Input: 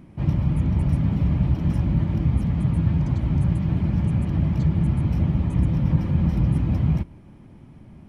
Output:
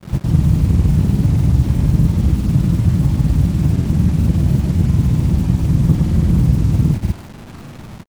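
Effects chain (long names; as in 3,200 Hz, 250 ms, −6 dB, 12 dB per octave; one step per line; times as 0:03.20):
phase distortion by the signal itself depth 0.68 ms
low-shelf EQ 420 Hz +6 dB
in parallel at +0.5 dB: downward compressor 12 to 1, threshold −20 dBFS, peak gain reduction 13 dB
on the sum: bit reduction 6 bits
granular cloud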